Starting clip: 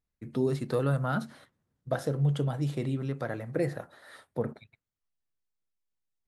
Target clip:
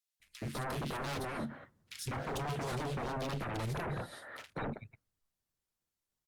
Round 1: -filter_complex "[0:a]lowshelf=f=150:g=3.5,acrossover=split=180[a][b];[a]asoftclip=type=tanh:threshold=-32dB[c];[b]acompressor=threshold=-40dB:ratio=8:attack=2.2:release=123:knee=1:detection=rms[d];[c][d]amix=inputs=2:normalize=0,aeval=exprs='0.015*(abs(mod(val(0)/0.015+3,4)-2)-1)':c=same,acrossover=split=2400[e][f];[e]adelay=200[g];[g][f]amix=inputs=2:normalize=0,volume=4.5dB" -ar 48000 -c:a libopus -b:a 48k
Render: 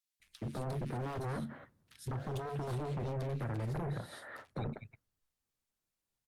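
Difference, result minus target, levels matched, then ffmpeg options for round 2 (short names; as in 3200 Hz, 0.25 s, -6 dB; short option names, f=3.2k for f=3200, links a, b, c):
compressor: peak gain reduction +10.5 dB
-filter_complex "[0:a]lowshelf=f=150:g=3.5,acrossover=split=180[a][b];[a]asoftclip=type=tanh:threshold=-32dB[c];[b]acompressor=threshold=-28dB:ratio=8:attack=2.2:release=123:knee=1:detection=rms[d];[c][d]amix=inputs=2:normalize=0,aeval=exprs='0.015*(abs(mod(val(0)/0.015+3,4)-2)-1)':c=same,acrossover=split=2400[e][f];[e]adelay=200[g];[g][f]amix=inputs=2:normalize=0,volume=4.5dB" -ar 48000 -c:a libopus -b:a 48k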